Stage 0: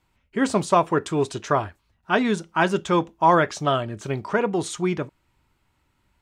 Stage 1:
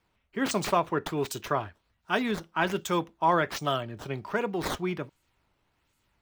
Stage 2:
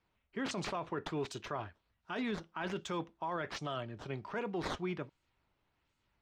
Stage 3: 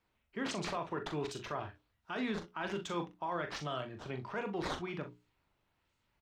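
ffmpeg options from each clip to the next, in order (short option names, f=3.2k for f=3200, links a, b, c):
-filter_complex "[0:a]aemphasis=mode=production:type=75kf,acrossover=split=150|940|4600[a][b][c][d];[d]acrusher=samples=11:mix=1:aa=0.000001:lfo=1:lforange=17.6:lforate=1.3[e];[a][b][c][e]amix=inputs=4:normalize=0,volume=-7.5dB"
-af "lowpass=5.5k,alimiter=limit=-22.5dB:level=0:latency=1:release=14,volume=-6dB"
-filter_complex "[0:a]bandreject=f=60:t=h:w=6,bandreject=f=120:t=h:w=6,bandreject=f=180:t=h:w=6,bandreject=f=240:t=h:w=6,bandreject=f=300:t=h:w=6,bandreject=f=360:t=h:w=6,bandreject=f=420:t=h:w=6,asplit=2[a][b];[b]aecho=0:1:40|63:0.422|0.141[c];[a][c]amix=inputs=2:normalize=0"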